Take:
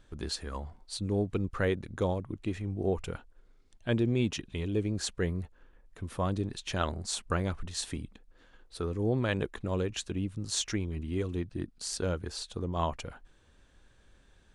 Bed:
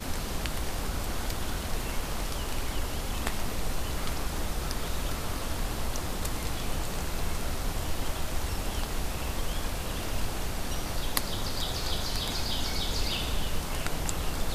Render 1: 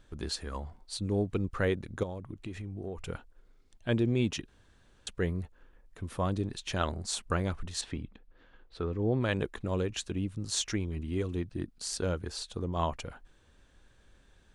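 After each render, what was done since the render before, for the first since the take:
0:02.03–0:03.09: downward compressor 4 to 1, threshold −36 dBFS
0:04.48–0:05.07: fill with room tone
0:07.81–0:09.21: low-pass filter 3,500 Hz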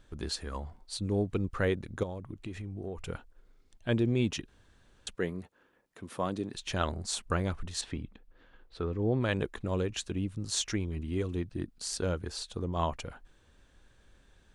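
0:05.16–0:06.54: high-pass filter 180 Hz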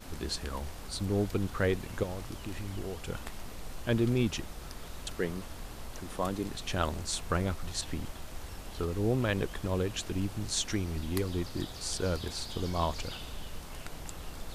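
mix in bed −11.5 dB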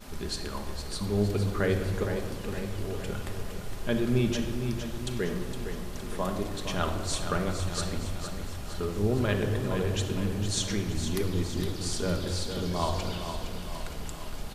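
repeating echo 462 ms, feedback 56%, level −8.5 dB
rectangular room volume 2,100 cubic metres, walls mixed, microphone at 1.3 metres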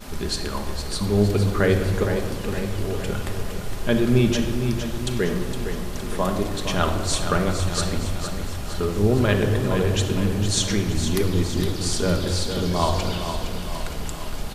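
level +7.5 dB

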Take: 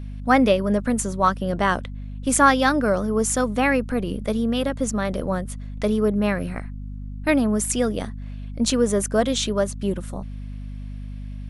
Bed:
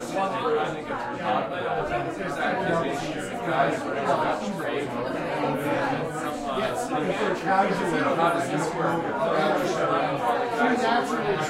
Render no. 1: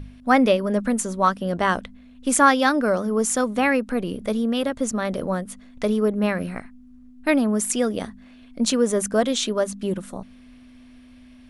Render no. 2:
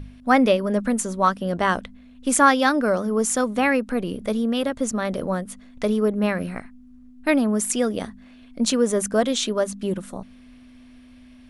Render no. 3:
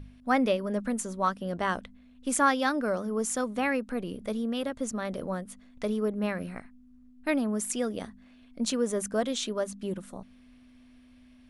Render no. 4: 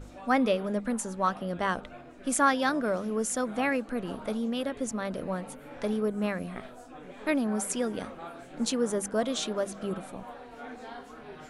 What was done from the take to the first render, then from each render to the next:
hum removal 50 Hz, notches 4
no processing that can be heard
level −8 dB
mix in bed −20.5 dB

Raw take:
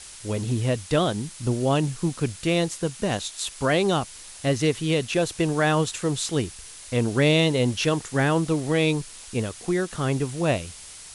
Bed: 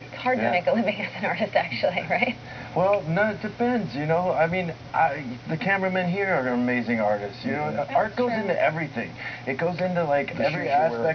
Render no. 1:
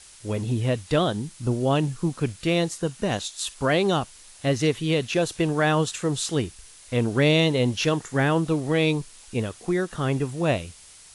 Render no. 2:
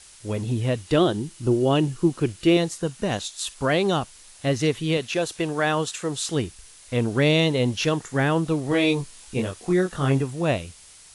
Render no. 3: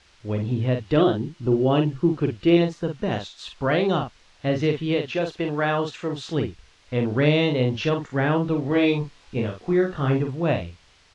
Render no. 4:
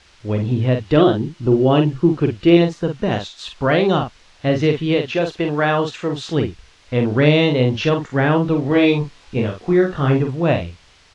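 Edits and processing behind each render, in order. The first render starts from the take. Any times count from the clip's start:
noise reduction from a noise print 6 dB
0:00.80–0:02.57: hollow resonant body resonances 350/2,900 Hz, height 10 dB; 0:04.97–0:06.29: low-shelf EQ 200 Hz −9 dB; 0:08.69–0:10.22: double-tracking delay 22 ms −3 dB
high-frequency loss of the air 210 metres; double-tracking delay 47 ms −6 dB
level +5.5 dB

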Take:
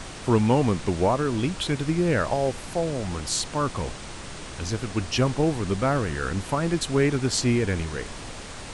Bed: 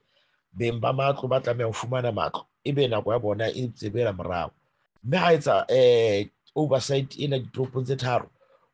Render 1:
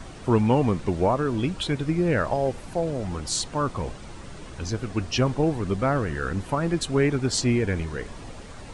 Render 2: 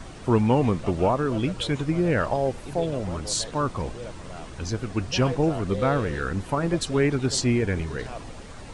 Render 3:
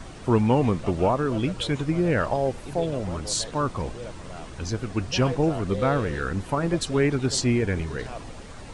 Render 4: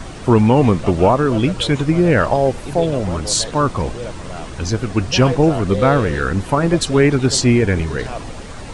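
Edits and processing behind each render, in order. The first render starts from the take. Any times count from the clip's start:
broadband denoise 9 dB, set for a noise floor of −38 dBFS
mix in bed −14 dB
no processing that can be heard
level +9 dB; brickwall limiter −2 dBFS, peak gain reduction 2.5 dB

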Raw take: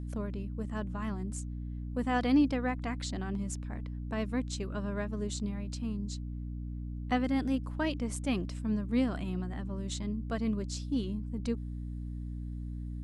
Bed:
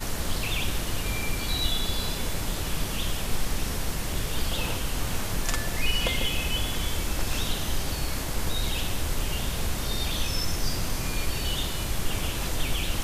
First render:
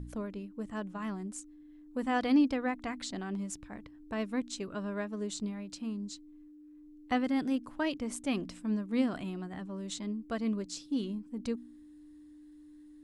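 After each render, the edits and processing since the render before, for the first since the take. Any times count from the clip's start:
hum removal 60 Hz, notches 4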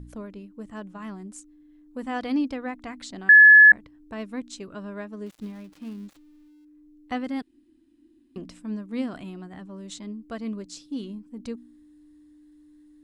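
0:03.29–0:03.72: beep over 1,710 Hz −7.5 dBFS
0:05.26–0:06.65: gap after every zero crossing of 0.16 ms
0:07.42–0:08.36: fill with room tone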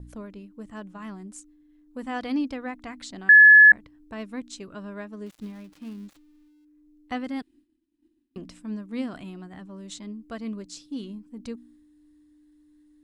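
downward expander −51 dBFS
parametric band 420 Hz −2 dB 2.4 octaves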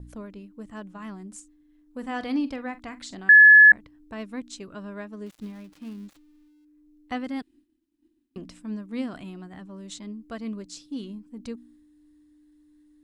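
0:01.28–0:03.20: double-tracking delay 45 ms −14 dB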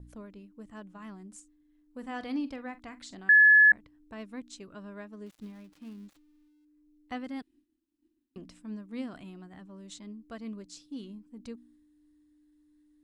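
level −6.5 dB

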